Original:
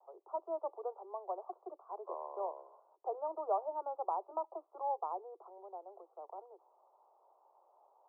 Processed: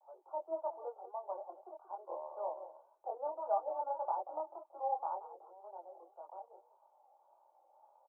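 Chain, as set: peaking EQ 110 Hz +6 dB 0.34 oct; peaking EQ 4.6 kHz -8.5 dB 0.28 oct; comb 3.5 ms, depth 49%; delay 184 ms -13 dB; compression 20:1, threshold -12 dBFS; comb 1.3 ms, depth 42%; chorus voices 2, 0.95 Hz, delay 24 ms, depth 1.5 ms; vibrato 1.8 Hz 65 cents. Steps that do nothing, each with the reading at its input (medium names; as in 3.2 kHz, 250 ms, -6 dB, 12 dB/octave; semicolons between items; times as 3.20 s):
peaking EQ 110 Hz: input has nothing below 290 Hz; peaking EQ 4.6 kHz: input has nothing above 1.4 kHz; compression, threshold -12 dBFS: peak at its input -21.0 dBFS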